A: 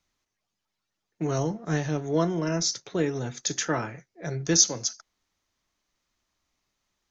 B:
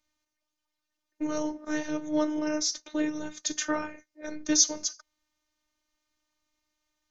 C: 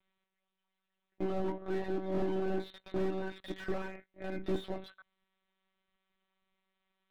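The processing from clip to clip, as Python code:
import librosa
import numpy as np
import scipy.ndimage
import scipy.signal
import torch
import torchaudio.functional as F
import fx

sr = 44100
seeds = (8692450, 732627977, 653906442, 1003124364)

y1 = fx.robotise(x, sr, hz=304.0)
y2 = fx.lpc_monotone(y1, sr, seeds[0], pitch_hz=190.0, order=16)
y2 = fx.slew_limit(y2, sr, full_power_hz=12.0)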